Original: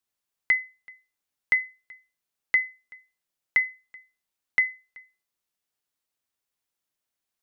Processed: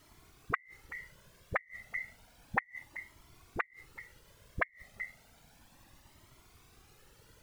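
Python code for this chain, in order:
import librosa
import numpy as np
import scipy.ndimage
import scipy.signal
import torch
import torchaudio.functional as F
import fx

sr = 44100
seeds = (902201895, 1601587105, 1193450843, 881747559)

y = fx.law_mismatch(x, sr, coded='mu', at=(0.79, 2.79))
y = scipy.signal.sosfilt(scipy.signal.butter(2, 1200.0, 'lowpass', fs=sr, output='sos'), y)
y = fx.dispersion(y, sr, late='highs', ms=43.0, hz=380.0)
y = fx.dmg_noise_colour(y, sr, seeds[0], colour='pink', level_db=-74.0)
y = fx.gate_flip(y, sr, shuts_db=-29.0, range_db=-34)
y = fx.whisperise(y, sr, seeds[1])
y = fx.comb_cascade(y, sr, direction='rising', hz=0.32)
y = y * 10.0 ** (17.5 / 20.0)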